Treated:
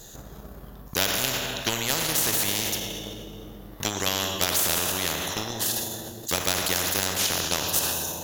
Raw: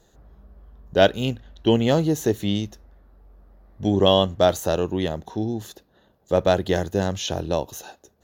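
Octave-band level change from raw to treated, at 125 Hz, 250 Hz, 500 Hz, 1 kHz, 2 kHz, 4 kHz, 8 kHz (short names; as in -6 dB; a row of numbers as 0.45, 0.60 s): -9.5, -11.0, -12.0, -4.0, +3.5, +3.0, +13.5 dB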